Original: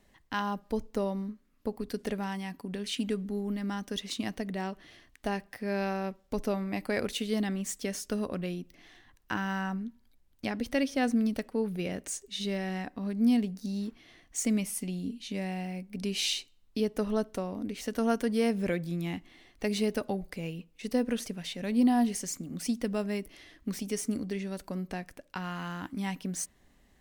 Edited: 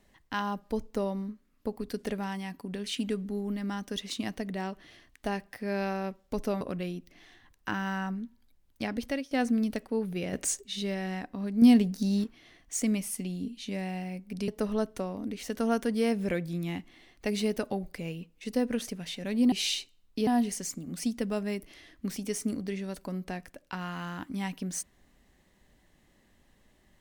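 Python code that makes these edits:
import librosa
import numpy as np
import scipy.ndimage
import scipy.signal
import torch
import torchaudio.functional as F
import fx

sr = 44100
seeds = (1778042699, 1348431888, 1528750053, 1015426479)

y = fx.edit(x, sr, fx.cut(start_s=6.61, length_s=1.63),
    fx.fade_out_to(start_s=10.67, length_s=0.27, floor_db=-19.0),
    fx.clip_gain(start_s=11.96, length_s=0.28, db=6.5),
    fx.clip_gain(start_s=13.25, length_s=0.62, db=6.5),
    fx.move(start_s=16.11, length_s=0.75, to_s=21.9), tone=tone)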